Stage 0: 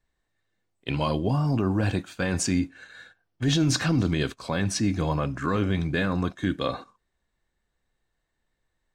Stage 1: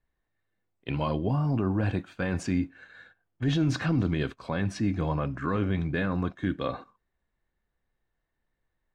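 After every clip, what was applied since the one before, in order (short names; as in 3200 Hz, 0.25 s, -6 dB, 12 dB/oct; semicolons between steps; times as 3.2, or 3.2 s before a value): tone controls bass +1 dB, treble -14 dB; gain -3 dB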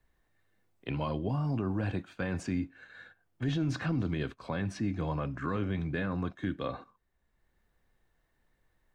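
three-band squash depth 40%; gain -5 dB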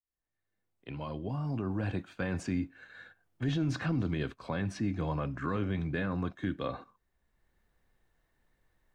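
opening faded in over 2.06 s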